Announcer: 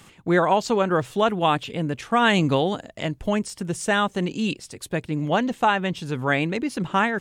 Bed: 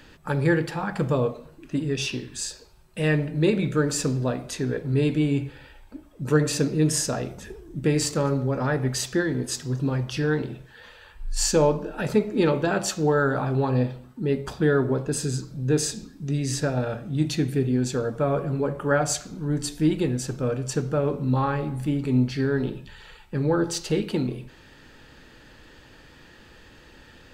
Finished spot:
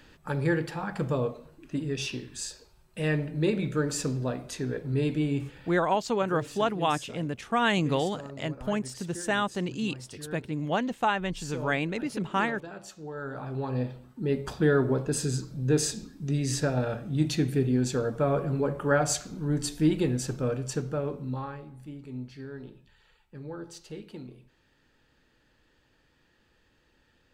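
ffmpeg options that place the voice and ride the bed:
-filter_complex "[0:a]adelay=5400,volume=-6dB[a];[1:a]volume=11.5dB,afade=t=out:st=5.7:d=0.34:silence=0.211349,afade=t=in:st=13.1:d=1.45:silence=0.149624,afade=t=out:st=20.3:d=1.35:silence=0.177828[b];[a][b]amix=inputs=2:normalize=0"

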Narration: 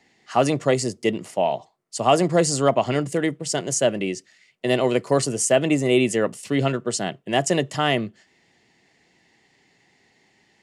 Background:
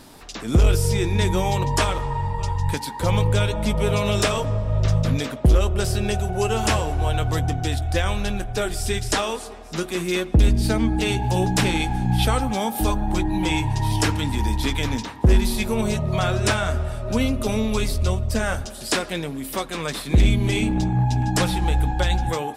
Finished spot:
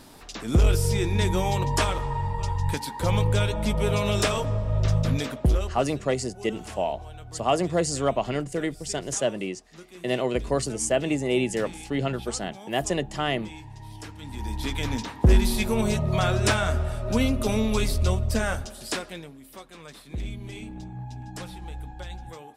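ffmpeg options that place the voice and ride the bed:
-filter_complex "[0:a]adelay=5400,volume=-5.5dB[a];[1:a]volume=15.5dB,afade=t=out:st=5.35:d=0.49:silence=0.141254,afade=t=in:st=14.15:d=1.03:silence=0.11885,afade=t=out:st=18.29:d=1.09:silence=0.16788[b];[a][b]amix=inputs=2:normalize=0"

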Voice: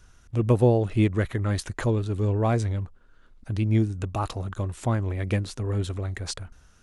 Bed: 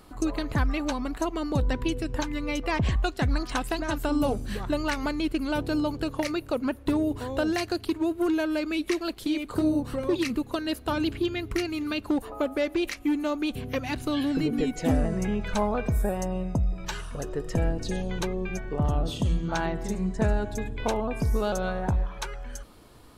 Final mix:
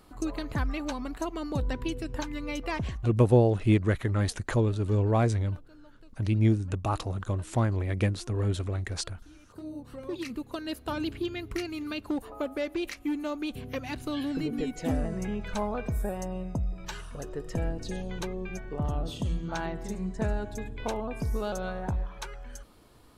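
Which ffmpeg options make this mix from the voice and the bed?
-filter_complex "[0:a]adelay=2700,volume=-1dB[a];[1:a]volume=19dB,afade=t=out:st=2.72:d=0.39:silence=0.0630957,afade=t=in:st=9.35:d=1.44:silence=0.0668344[b];[a][b]amix=inputs=2:normalize=0"

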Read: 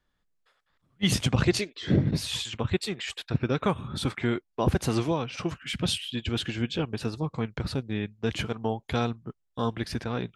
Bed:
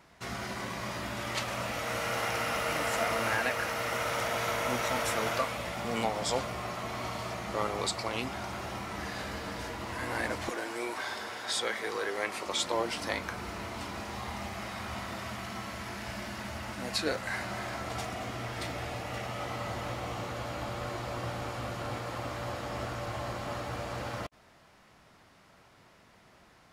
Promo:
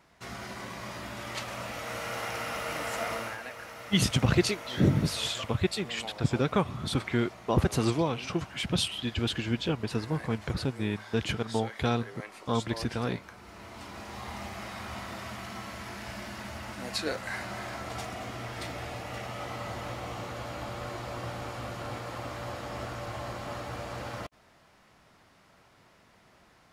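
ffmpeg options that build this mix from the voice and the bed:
-filter_complex "[0:a]adelay=2900,volume=-0.5dB[a];[1:a]volume=7dB,afade=t=out:st=3.14:d=0.23:silence=0.398107,afade=t=in:st=13.42:d=0.94:silence=0.316228[b];[a][b]amix=inputs=2:normalize=0"

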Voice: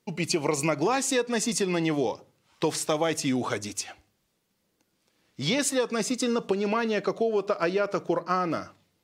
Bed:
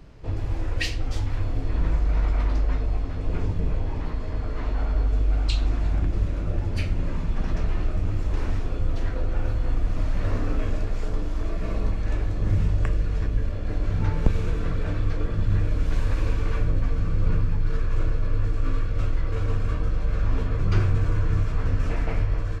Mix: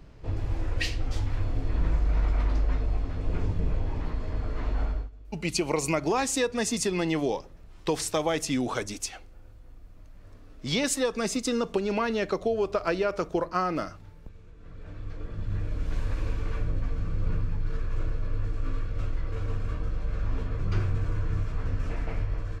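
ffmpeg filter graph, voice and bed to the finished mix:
-filter_complex "[0:a]adelay=5250,volume=-1dB[a];[1:a]volume=17dB,afade=t=out:st=4.84:d=0.26:silence=0.0707946,afade=t=in:st=14.56:d=1.4:silence=0.105925[b];[a][b]amix=inputs=2:normalize=0"

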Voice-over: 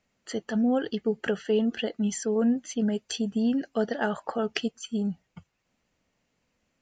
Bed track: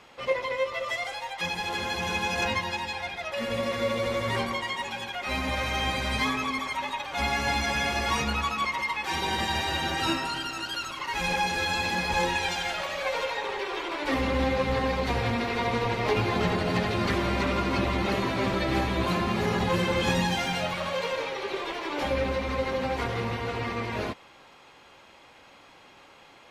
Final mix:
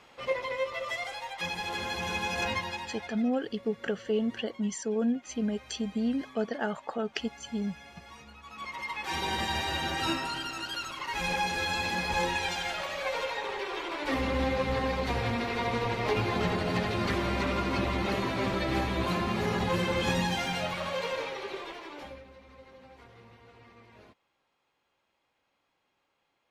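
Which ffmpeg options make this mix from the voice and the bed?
-filter_complex "[0:a]adelay=2600,volume=-4dB[a];[1:a]volume=16.5dB,afade=t=out:st=2.58:d=0.82:silence=0.105925,afade=t=in:st=8.43:d=0.74:silence=0.1,afade=t=out:st=21.19:d=1.04:silence=0.0891251[b];[a][b]amix=inputs=2:normalize=0"

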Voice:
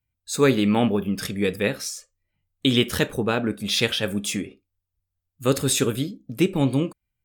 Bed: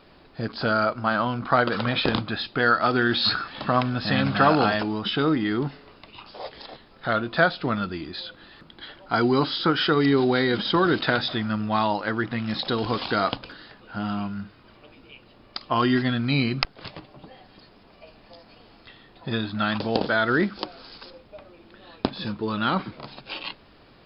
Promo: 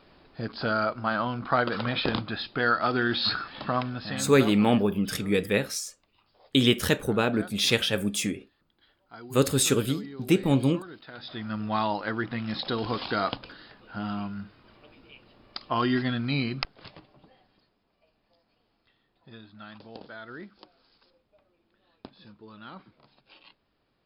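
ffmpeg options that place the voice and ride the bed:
-filter_complex "[0:a]adelay=3900,volume=-1.5dB[a];[1:a]volume=15dB,afade=t=out:st=3.56:d=0.99:silence=0.112202,afade=t=in:st=11.13:d=0.54:silence=0.112202,afade=t=out:st=16.17:d=1.59:silence=0.149624[b];[a][b]amix=inputs=2:normalize=0"

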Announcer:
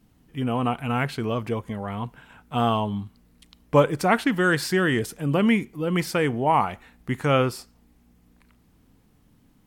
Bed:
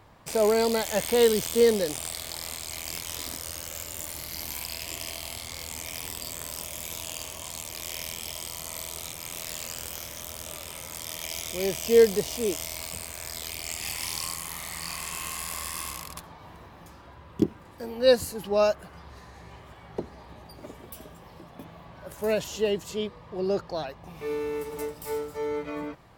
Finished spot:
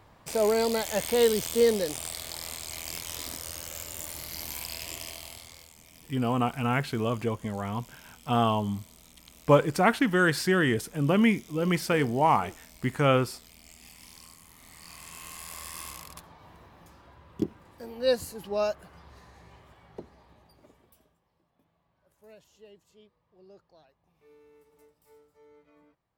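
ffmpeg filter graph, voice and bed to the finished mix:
-filter_complex "[0:a]adelay=5750,volume=-2dB[a];[1:a]volume=11dB,afade=t=out:st=4.85:d=0.9:silence=0.149624,afade=t=in:st=14.55:d=1.28:silence=0.223872,afade=t=out:st=19.21:d=2:silence=0.0841395[b];[a][b]amix=inputs=2:normalize=0"

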